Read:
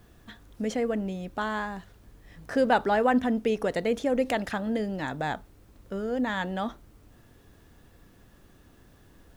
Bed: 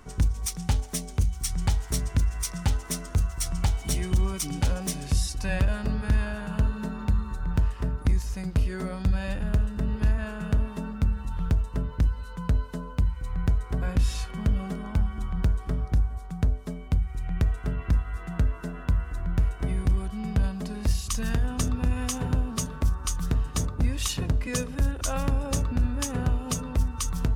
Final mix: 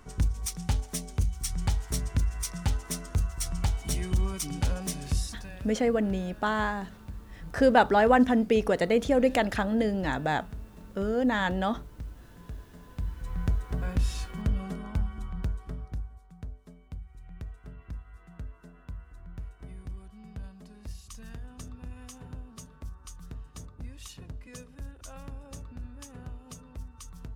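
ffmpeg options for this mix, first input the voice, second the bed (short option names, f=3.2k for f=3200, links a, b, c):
-filter_complex "[0:a]adelay=5050,volume=2.5dB[a];[1:a]volume=10.5dB,afade=t=out:st=5.1:d=0.42:silence=0.199526,afade=t=in:st=12.84:d=0.46:silence=0.211349,afade=t=out:st=14.77:d=1.46:silence=0.223872[b];[a][b]amix=inputs=2:normalize=0"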